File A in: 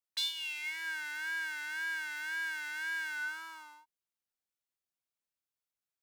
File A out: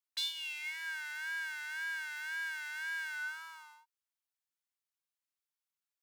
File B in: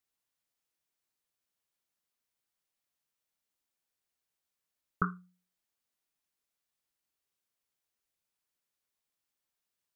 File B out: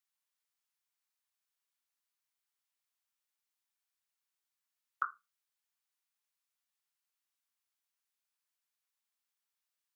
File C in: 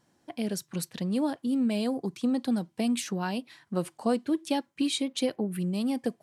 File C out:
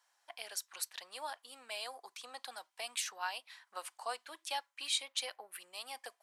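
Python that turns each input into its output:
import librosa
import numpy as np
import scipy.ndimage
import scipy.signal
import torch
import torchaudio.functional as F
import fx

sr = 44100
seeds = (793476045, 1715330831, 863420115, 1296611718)

y = scipy.signal.sosfilt(scipy.signal.butter(4, 830.0, 'highpass', fs=sr, output='sos'), x)
y = y * librosa.db_to_amplitude(-2.0)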